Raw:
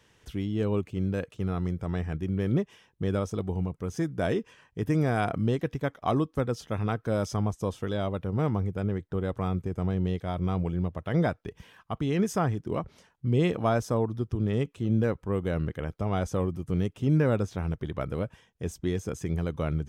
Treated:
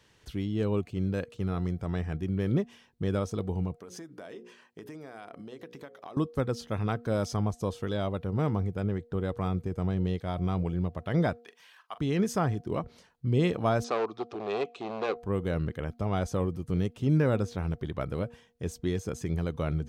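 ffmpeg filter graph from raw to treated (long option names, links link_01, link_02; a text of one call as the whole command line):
ffmpeg -i in.wav -filter_complex "[0:a]asettb=1/sr,asplit=3[link_01][link_02][link_03];[link_01]atrim=end=3.794[link_04];[link_02]atrim=start=3.79:end=6.17,asetpts=PTS-STARTPTS,afade=type=in:duration=0.004:curve=qsin,afade=type=out:start_time=2.376:duration=0.004:curve=qsin,highpass=280,bandreject=frequency=60:width_type=h:width=6,bandreject=frequency=120:width_type=h:width=6,bandreject=frequency=180:width_type=h:width=6,bandreject=frequency=240:width_type=h:width=6,bandreject=frequency=300:width_type=h:width=6,bandreject=frequency=360:width_type=h:width=6,bandreject=frequency=420:width_type=h:width=6,bandreject=frequency=480:width_type=h:width=6,bandreject=frequency=540:width_type=h:width=6,acompressor=threshold=-39dB:ratio=8:attack=3.2:release=140:knee=1:detection=peak[link_05];[link_03]atrim=start=6.166[link_06];[link_04][link_05]acrossfade=duration=0.004:curve1=hsin:curve2=qsin[link_07];[link_07][link_06]acrossfade=duration=0.004:curve1=qsin:curve2=hsin,asettb=1/sr,asplit=3[link_08][link_09][link_10];[link_08]atrim=end=11.404[link_11];[link_09]atrim=start=11.4:end=11.98,asetpts=PTS-STARTPTS,afade=type=in:duration=0.004:curve=qsin,afade=type=out:start_time=0.576:duration=0.004:curve=qsin,highpass=960,asplit=2[link_12][link_13];[link_13]adelay=43,volume=-13.5dB[link_14];[link_12][link_14]amix=inputs=2:normalize=0,atrim=end_sample=25578[link_15];[link_10]atrim=start=11.976[link_16];[link_11][link_15]acrossfade=duration=0.004:curve1=hsin:curve2=qsin[link_17];[link_17][link_16]acrossfade=duration=0.004:curve1=qsin:curve2=hsin,asettb=1/sr,asplit=3[link_18][link_19][link_20];[link_18]atrim=end=13.844[link_21];[link_19]atrim=start=13.84:end=15.17,asetpts=PTS-STARTPTS,afade=type=in:duration=0.004:curve=qsin,afade=type=out:start_time=1.326:duration=0.004:curve=qsin,asoftclip=type=hard:threshold=-25.5dB,highpass=370,equalizer=frequency=400:width_type=q:width=4:gain=9,equalizer=frequency=750:width_type=q:width=4:gain=10,equalizer=frequency=1200:width_type=q:width=4:gain=9,equalizer=frequency=2500:width_type=q:width=4:gain=8,equalizer=frequency=3800:width_type=q:width=4:gain=6,lowpass=frequency=7200:width=0.5412,lowpass=frequency=7200:width=1.3066[link_22];[link_20]atrim=start=15.166[link_23];[link_21][link_22]acrossfade=duration=0.004:curve1=hsin:curve2=qsin[link_24];[link_24][link_23]acrossfade=duration=0.004:curve1=qsin:curve2=hsin,equalizer=frequency=4300:width_type=o:width=0.28:gain=6.5,bandreject=frequency=237.1:width_type=h:width=4,bandreject=frequency=474.2:width_type=h:width=4,bandreject=frequency=711.3:width_type=h:width=4,volume=-1dB" out.wav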